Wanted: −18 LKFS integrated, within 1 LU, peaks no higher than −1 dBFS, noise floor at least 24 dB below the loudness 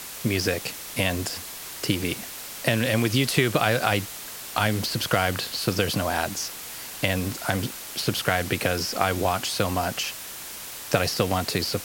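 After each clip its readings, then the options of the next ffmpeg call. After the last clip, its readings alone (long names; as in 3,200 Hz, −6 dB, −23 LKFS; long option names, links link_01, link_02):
background noise floor −38 dBFS; target noise floor −50 dBFS; integrated loudness −25.5 LKFS; sample peak −5.0 dBFS; target loudness −18.0 LKFS
→ -af "afftdn=noise_reduction=12:noise_floor=-38"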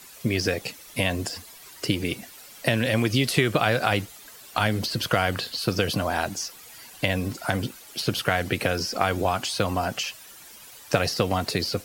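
background noise floor −47 dBFS; target noise floor −50 dBFS
→ -af "afftdn=noise_reduction=6:noise_floor=-47"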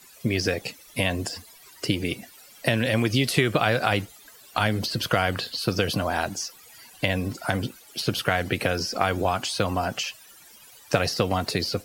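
background noise floor −51 dBFS; integrated loudness −26.0 LKFS; sample peak −5.5 dBFS; target loudness −18.0 LKFS
→ -af "volume=8dB,alimiter=limit=-1dB:level=0:latency=1"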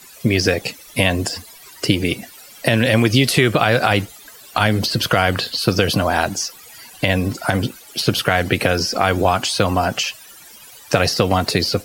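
integrated loudness −18.5 LKFS; sample peak −1.0 dBFS; background noise floor −43 dBFS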